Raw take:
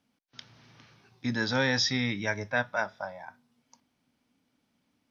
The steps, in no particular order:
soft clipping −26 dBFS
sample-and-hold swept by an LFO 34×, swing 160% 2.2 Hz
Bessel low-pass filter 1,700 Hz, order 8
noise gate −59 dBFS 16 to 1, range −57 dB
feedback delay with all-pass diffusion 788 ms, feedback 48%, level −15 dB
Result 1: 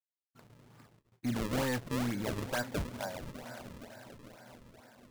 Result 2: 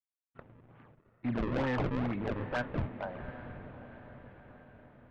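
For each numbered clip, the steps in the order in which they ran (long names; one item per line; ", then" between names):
feedback delay with all-pass diffusion, then soft clipping, then Bessel low-pass filter, then noise gate, then sample-and-hold swept by an LFO
sample-and-hold swept by an LFO, then Bessel low-pass filter, then noise gate, then feedback delay with all-pass diffusion, then soft clipping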